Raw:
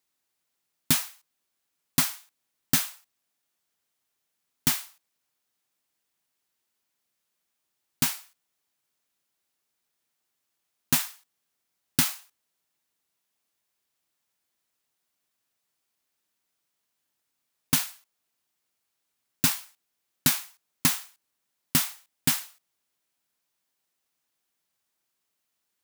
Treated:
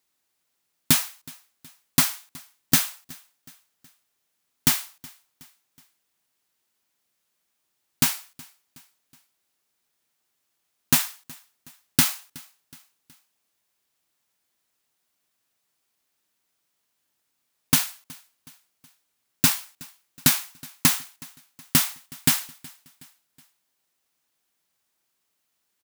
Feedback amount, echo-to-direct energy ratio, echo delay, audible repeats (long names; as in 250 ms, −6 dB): 49%, −22.5 dB, 370 ms, 2